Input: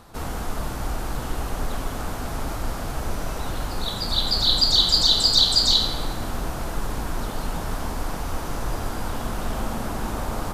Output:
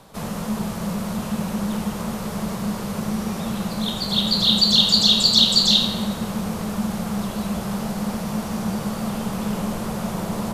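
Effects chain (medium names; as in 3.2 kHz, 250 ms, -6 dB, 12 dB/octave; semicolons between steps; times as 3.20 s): frequency shift -230 Hz; bass shelf 150 Hz -5 dB; trim +2 dB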